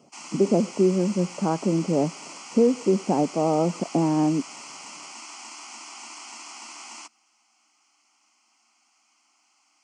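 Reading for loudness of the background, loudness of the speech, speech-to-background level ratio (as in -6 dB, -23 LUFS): -39.5 LUFS, -23.5 LUFS, 16.0 dB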